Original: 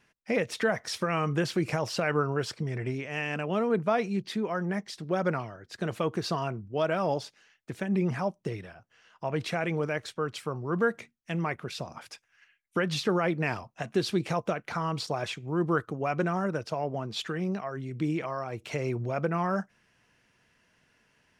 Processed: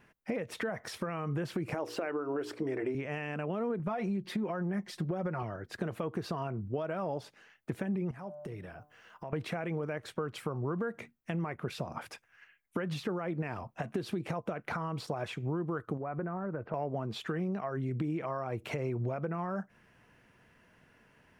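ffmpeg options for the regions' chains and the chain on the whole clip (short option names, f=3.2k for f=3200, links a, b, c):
-filter_complex "[0:a]asettb=1/sr,asplit=3[a][b][c];[a]atrim=end=1.744[d];[b]atrim=start=1.74:end=2.95,asetpts=PTS-STARTPTS,afade=t=in:d=0.004:c=qsin,afade=t=out:st=1.206:d=0.004:c=qsin,deesser=0.7,lowshelf=f=230:t=q:w=3:g=-9.5,bandreject=f=60:t=h:w=6,bandreject=f=120:t=h:w=6,bandreject=f=180:t=h:w=6,bandreject=f=240:t=h:w=6,bandreject=f=300:t=h:w=6,bandreject=f=360:t=h:w=6,bandreject=f=420:t=h:w=6,bandreject=f=480:t=h:w=6[e];[c]atrim=start=2.946[f];[d][e]acrossfade=d=0.004:c1=hsin:c2=qsin[g];[g][f]acrossfade=d=0.004:c1=qsin:c2=hsin,asettb=1/sr,asplit=3[h][i][j];[h]atrim=end=3.794[k];[i]atrim=start=3.79:end=5.43,asetpts=PTS-STARTPTS,afade=t=in:d=0.004:c=qsin,afade=t=out:st=1.636:d=0.004:c=qsin,aecho=1:1:5.6:0.69,atrim=end_sample=72324,acompressor=threshold=-28dB:ratio=5:attack=3.2:release=140:knee=1:detection=peak[l];[j]atrim=start=5.426[m];[k][l]acrossfade=d=0.004:c1=hsin:c2=qsin[n];[n][m]acrossfade=d=0.004:c1=qsin:c2=hsin,asettb=1/sr,asplit=3[o][p][q];[o]atrim=end=8.114[r];[p]atrim=start=8.11:end=9.33,asetpts=PTS-STARTPTS,afade=t=in:d=0.004:c=qsin,afade=t=out:st=1.216:d=0.004:c=qsin,bandreject=f=148.5:t=h:w=4,bandreject=f=297:t=h:w=4,bandreject=f=445.5:t=h:w=4,bandreject=f=594:t=h:w=4,bandreject=f=742.5:t=h:w=4,bandreject=f=891:t=h:w=4,bandreject=f=1.0395k:t=h:w=4,bandreject=f=1.188k:t=h:w=4,bandreject=f=1.3365k:t=h:w=4,bandreject=f=1.485k:t=h:w=4,acompressor=threshold=-49dB:ratio=3:attack=3.2:release=140:knee=1:detection=peak,highshelf=f=8.4k:g=8[s];[q]atrim=start=9.326[t];[r][s]acrossfade=d=0.004:c1=hsin:c2=qsin[u];[u][t]acrossfade=d=0.004:c1=qsin:c2=hsin,asettb=1/sr,asplit=3[v][w][x];[v]atrim=end=15.974[y];[w]atrim=start=15.97:end=16.74,asetpts=PTS-STARTPTS,afade=t=in:d=0.004:c=qsin,afade=t=out:st=0.766:d=0.004:c=qsin,lowpass=f=1.9k:w=0.5412,lowpass=f=1.9k:w=1.3066,acompressor=threshold=-41dB:ratio=3:attack=3.2:release=140:knee=1:detection=peak[z];[x]atrim=start=16.736[aa];[y][z]acrossfade=d=0.004:c1=hsin:c2=qsin[ab];[ab][aa]acrossfade=d=0.004:c1=qsin:c2=hsin,alimiter=limit=-23.5dB:level=0:latency=1:release=199,acompressor=threshold=-37dB:ratio=6,equalizer=f=5.5k:t=o:w=2.1:g=-12,volume=6.5dB"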